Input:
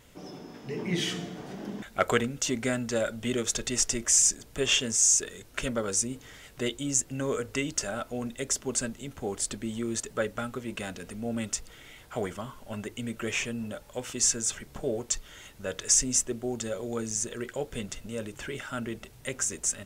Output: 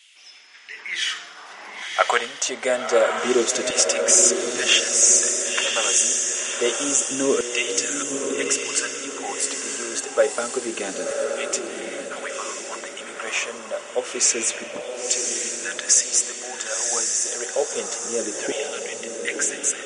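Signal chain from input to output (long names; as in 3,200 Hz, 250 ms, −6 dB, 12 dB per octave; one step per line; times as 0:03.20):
auto-filter high-pass saw down 0.27 Hz 290–2,900 Hz
feedback delay with all-pass diffusion 1,031 ms, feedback 45%, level −3.5 dB
level +5.5 dB
MP3 48 kbit/s 44,100 Hz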